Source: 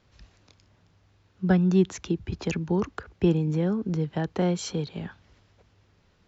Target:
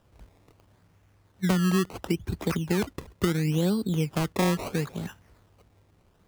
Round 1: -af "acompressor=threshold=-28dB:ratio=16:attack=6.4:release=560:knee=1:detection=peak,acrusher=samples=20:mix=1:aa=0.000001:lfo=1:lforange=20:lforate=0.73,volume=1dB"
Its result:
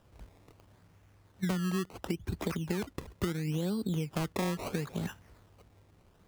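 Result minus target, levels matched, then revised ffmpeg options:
downward compressor: peak gain reduction +8.5 dB
-af "acompressor=threshold=-19dB:ratio=16:attack=6.4:release=560:knee=1:detection=peak,acrusher=samples=20:mix=1:aa=0.000001:lfo=1:lforange=20:lforate=0.73,volume=1dB"

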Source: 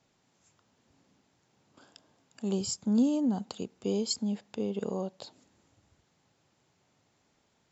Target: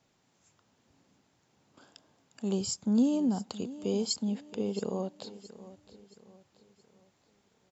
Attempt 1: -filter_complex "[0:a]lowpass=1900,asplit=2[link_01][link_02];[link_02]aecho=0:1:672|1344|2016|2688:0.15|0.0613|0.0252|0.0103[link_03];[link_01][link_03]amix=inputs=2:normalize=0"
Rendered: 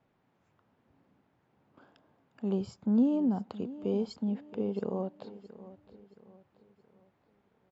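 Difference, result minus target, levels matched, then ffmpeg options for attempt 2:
2,000 Hz band −3.5 dB
-filter_complex "[0:a]asplit=2[link_01][link_02];[link_02]aecho=0:1:672|1344|2016|2688:0.15|0.0613|0.0252|0.0103[link_03];[link_01][link_03]amix=inputs=2:normalize=0"

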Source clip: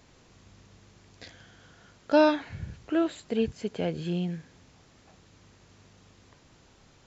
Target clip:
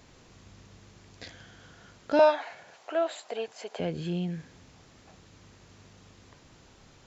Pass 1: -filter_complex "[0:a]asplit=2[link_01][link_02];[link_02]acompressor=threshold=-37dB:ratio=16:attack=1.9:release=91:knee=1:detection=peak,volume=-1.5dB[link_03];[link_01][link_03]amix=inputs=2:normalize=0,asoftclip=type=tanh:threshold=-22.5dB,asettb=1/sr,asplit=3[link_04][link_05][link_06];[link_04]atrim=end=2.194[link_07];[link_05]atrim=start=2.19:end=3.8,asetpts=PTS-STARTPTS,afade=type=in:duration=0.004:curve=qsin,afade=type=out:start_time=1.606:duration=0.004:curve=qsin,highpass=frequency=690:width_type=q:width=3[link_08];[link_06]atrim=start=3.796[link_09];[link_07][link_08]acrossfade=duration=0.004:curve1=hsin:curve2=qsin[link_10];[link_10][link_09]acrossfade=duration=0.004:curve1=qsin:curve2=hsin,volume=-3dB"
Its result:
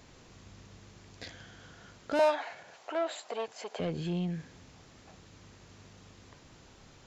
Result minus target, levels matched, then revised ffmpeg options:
soft clipping: distortion +14 dB
-filter_complex "[0:a]asplit=2[link_01][link_02];[link_02]acompressor=threshold=-37dB:ratio=16:attack=1.9:release=91:knee=1:detection=peak,volume=-1.5dB[link_03];[link_01][link_03]amix=inputs=2:normalize=0,asoftclip=type=tanh:threshold=-11dB,asettb=1/sr,asplit=3[link_04][link_05][link_06];[link_04]atrim=end=2.194[link_07];[link_05]atrim=start=2.19:end=3.8,asetpts=PTS-STARTPTS,afade=type=in:duration=0.004:curve=qsin,afade=type=out:start_time=1.606:duration=0.004:curve=qsin,highpass=frequency=690:width_type=q:width=3[link_08];[link_06]atrim=start=3.796[link_09];[link_07][link_08]acrossfade=duration=0.004:curve1=hsin:curve2=qsin[link_10];[link_10][link_09]acrossfade=duration=0.004:curve1=qsin:curve2=hsin,volume=-3dB"

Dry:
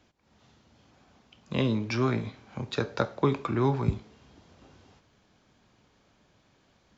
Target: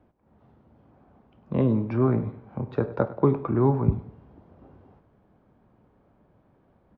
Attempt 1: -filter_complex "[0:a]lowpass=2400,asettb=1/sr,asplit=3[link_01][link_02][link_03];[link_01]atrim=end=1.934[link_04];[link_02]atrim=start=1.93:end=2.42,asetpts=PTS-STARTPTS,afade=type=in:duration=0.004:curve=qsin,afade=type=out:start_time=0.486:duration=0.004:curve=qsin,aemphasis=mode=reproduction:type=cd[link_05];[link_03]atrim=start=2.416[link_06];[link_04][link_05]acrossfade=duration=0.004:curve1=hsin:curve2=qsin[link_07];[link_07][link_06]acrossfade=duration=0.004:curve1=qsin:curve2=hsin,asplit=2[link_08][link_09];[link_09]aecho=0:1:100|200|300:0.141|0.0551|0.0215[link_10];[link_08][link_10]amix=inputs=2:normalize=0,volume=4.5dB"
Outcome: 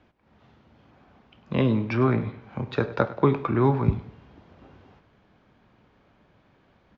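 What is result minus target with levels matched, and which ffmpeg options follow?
2,000 Hz band +9.5 dB
-filter_complex "[0:a]lowpass=930,asettb=1/sr,asplit=3[link_01][link_02][link_03];[link_01]atrim=end=1.934[link_04];[link_02]atrim=start=1.93:end=2.42,asetpts=PTS-STARTPTS,afade=type=in:duration=0.004:curve=qsin,afade=type=out:start_time=0.486:duration=0.004:curve=qsin,aemphasis=mode=reproduction:type=cd[link_05];[link_03]atrim=start=2.416[link_06];[link_04][link_05]acrossfade=duration=0.004:curve1=hsin:curve2=qsin[link_07];[link_07][link_06]acrossfade=duration=0.004:curve1=qsin:curve2=hsin,asplit=2[link_08][link_09];[link_09]aecho=0:1:100|200|300:0.141|0.0551|0.0215[link_10];[link_08][link_10]amix=inputs=2:normalize=0,volume=4.5dB"

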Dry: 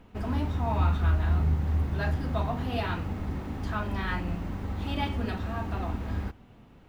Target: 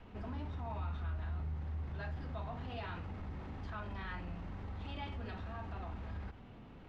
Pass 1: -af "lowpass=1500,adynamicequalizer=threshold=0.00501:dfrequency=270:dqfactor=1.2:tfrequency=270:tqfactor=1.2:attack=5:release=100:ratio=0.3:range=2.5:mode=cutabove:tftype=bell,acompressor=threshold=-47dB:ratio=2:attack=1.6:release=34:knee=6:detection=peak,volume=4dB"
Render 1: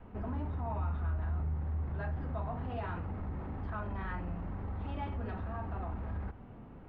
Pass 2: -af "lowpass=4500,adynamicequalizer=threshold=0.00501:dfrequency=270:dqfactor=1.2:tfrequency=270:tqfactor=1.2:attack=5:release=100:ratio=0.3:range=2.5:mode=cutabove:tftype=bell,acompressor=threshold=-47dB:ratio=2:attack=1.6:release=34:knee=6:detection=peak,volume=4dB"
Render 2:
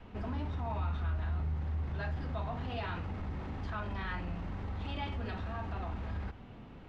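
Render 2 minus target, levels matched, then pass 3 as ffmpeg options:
downward compressor: peak gain reduction −5 dB
-af "lowpass=4500,adynamicequalizer=threshold=0.00501:dfrequency=270:dqfactor=1.2:tfrequency=270:tqfactor=1.2:attack=5:release=100:ratio=0.3:range=2.5:mode=cutabove:tftype=bell,acompressor=threshold=-57.5dB:ratio=2:attack=1.6:release=34:knee=6:detection=peak,volume=4dB"

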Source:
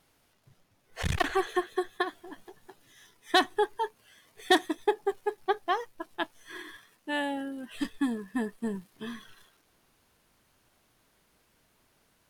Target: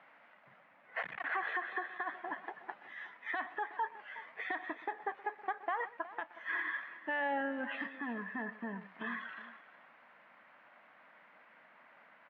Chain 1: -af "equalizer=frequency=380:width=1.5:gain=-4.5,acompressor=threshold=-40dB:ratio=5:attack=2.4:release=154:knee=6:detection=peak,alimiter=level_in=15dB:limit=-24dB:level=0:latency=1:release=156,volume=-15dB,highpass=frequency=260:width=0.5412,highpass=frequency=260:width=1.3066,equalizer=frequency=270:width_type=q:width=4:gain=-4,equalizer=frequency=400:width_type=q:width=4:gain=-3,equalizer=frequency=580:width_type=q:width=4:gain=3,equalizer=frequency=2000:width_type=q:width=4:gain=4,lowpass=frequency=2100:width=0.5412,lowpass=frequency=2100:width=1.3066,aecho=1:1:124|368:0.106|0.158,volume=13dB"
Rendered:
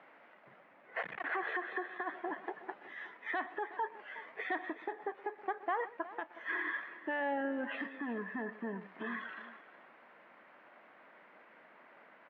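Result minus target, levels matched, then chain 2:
500 Hz band +3.5 dB
-af "equalizer=frequency=380:width=1.5:gain=-16,acompressor=threshold=-40dB:ratio=5:attack=2.4:release=154:knee=6:detection=peak,alimiter=level_in=15dB:limit=-24dB:level=0:latency=1:release=156,volume=-15dB,highpass=frequency=260:width=0.5412,highpass=frequency=260:width=1.3066,equalizer=frequency=270:width_type=q:width=4:gain=-4,equalizer=frequency=400:width_type=q:width=4:gain=-3,equalizer=frequency=580:width_type=q:width=4:gain=3,equalizer=frequency=2000:width_type=q:width=4:gain=4,lowpass=frequency=2100:width=0.5412,lowpass=frequency=2100:width=1.3066,aecho=1:1:124|368:0.106|0.158,volume=13dB"

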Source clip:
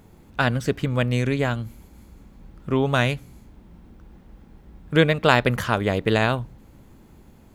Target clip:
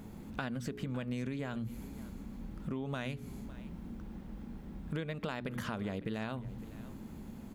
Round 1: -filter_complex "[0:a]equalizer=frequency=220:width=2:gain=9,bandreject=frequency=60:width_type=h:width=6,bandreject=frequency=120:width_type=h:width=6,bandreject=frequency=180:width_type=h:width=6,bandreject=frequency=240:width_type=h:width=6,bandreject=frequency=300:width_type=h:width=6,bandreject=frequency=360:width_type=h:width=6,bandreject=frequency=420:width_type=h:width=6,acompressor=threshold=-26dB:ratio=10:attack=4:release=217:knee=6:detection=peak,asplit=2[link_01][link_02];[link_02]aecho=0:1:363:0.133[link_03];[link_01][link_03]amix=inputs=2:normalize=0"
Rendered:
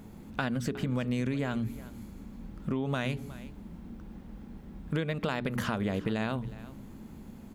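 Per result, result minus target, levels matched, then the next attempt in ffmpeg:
echo 194 ms early; downward compressor: peak gain reduction −7 dB
-filter_complex "[0:a]equalizer=frequency=220:width=2:gain=9,bandreject=frequency=60:width_type=h:width=6,bandreject=frequency=120:width_type=h:width=6,bandreject=frequency=180:width_type=h:width=6,bandreject=frequency=240:width_type=h:width=6,bandreject=frequency=300:width_type=h:width=6,bandreject=frequency=360:width_type=h:width=6,bandreject=frequency=420:width_type=h:width=6,acompressor=threshold=-26dB:ratio=10:attack=4:release=217:knee=6:detection=peak,asplit=2[link_01][link_02];[link_02]aecho=0:1:557:0.133[link_03];[link_01][link_03]amix=inputs=2:normalize=0"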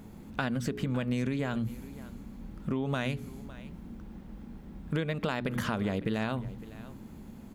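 downward compressor: peak gain reduction −7 dB
-filter_complex "[0:a]equalizer=frequency=220:width=2:gain=9,bandreject=frequency=60:width_type=h:width=6,bandreject=frequency=120:width_type=h:width=6,bandreject=frequency=180:width_type=h:width=6,bandreject=frequency=240:width_type=h:width=6,bandreject=frequency=300:width_type=h:width=6,bandreject=frequency=360:width_type=h:width=6,bandreject=frequency=420:width_type=h:width=6,acompressor=threshold=-33.5dB:ratio=10:attack=4:release=217:knee=6:detection=peak,asplit=2[link_01][link_02];[link_02]aecho=0:1:557:0.133[link_03];[link_01][link_03]amix=inputs=2:normalize=0"

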